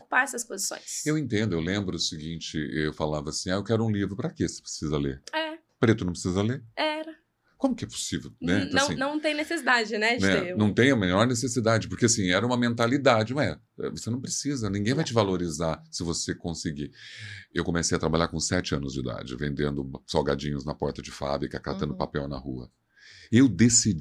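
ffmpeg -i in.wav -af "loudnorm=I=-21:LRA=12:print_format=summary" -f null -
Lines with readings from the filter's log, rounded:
Input Integrated:    -26.4 LUFS
Input True Peak:      -7.4 dBTP
Input LRA:             5.1 LU
Input Threshold:     -36.8 LUFS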